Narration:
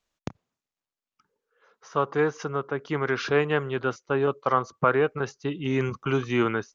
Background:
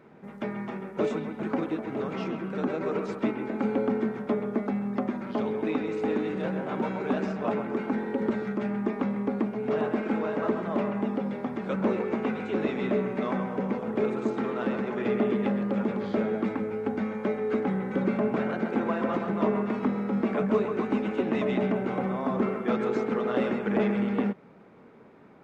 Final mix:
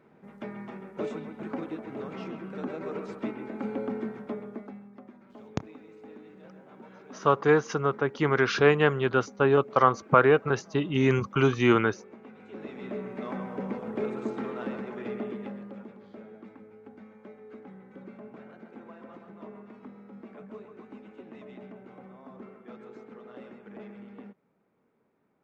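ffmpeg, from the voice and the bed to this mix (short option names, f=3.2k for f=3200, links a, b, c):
-filter_complex "[0:a]adelay=5300,volume=2.5dB[a];[1:a]volume=9.5dB,afade=t=out:st=4.11:d=0.79:silence=0.199526,afade=t=in:st=12.31:d=1.32:silence=0.16788,afade=t=out:st=14.42:d=1.53:silence=0.177828[b];[a][b]amix=inputs=2:normalize=0"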